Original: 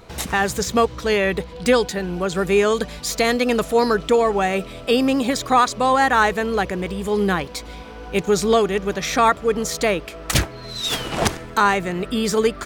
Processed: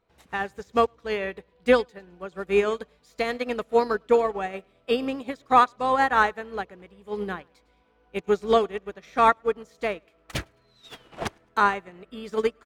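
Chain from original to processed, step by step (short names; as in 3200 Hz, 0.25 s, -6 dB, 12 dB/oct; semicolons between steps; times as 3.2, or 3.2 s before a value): tone controls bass -4 dB, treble -9 dB; feedback echo 0.106 s, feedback 40%, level -17.5 dB; upward expander 2.5:1, over -30 dBFS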